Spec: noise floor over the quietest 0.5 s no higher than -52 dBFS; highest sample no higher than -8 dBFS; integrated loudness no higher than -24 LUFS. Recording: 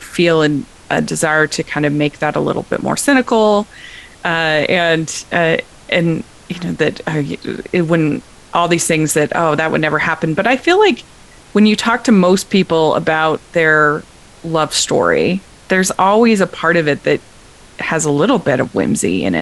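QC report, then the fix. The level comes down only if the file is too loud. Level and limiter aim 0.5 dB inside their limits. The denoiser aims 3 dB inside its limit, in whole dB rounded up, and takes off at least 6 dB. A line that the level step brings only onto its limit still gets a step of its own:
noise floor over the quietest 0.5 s -41 dBFS: fail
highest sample -1.5 dBFS: fail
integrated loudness -14.5 LUFS: fail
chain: noise reduction 6 dB, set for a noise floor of -41 dBFS; trim -10 dB

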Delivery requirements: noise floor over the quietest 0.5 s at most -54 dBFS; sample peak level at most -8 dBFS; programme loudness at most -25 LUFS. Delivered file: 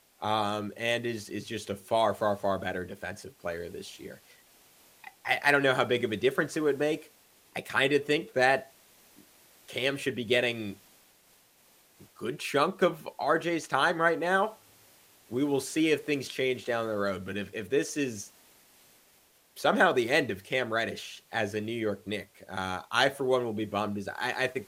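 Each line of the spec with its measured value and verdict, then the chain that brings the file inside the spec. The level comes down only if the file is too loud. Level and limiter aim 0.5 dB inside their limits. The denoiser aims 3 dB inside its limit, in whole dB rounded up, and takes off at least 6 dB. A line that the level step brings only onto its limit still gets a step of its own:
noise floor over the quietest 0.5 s -63 dBFS: pass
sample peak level -7.0 dBFS: fail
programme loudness -29.0 LUFS: pass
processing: peak limiter -8.5 dBFS

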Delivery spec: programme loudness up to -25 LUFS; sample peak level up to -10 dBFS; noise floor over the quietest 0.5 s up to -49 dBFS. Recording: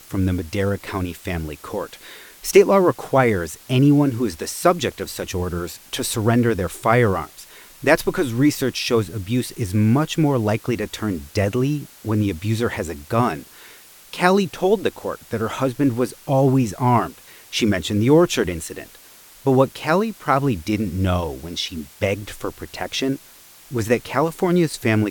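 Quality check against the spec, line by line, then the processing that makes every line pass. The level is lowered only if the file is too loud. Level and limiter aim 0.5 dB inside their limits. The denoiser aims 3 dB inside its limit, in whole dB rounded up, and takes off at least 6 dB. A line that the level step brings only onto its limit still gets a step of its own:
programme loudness -21.0 LUFS: fail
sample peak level -2.5 dBFS: fail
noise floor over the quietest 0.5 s -47 dBFS: fail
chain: trim -4.5 dB; peak limiter -10.5 dBFS

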